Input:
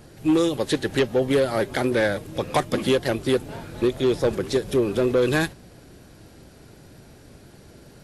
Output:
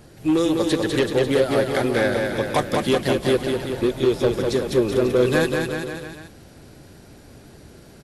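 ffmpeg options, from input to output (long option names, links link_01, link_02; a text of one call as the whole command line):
ffmpeg -i in.wav -af "aecho=1:1:200|380|542|687.8|819:0.631|0.398|0.251|0.158|0.1" out.wav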